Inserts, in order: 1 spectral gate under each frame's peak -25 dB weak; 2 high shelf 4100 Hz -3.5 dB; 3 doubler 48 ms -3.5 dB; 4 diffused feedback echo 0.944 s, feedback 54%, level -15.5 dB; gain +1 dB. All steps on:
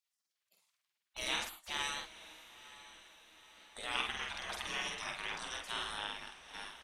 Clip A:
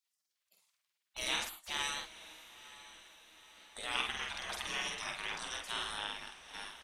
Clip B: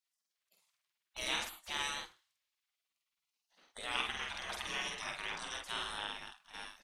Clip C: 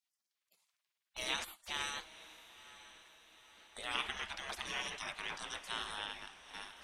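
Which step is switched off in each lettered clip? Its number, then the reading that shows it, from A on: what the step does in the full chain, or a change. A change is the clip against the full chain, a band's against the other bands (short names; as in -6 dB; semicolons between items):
2, 8 kHz band +2.5 dB; 4, echo-to-direct -14.0 dB to none; 3, loudness change -1.5 LU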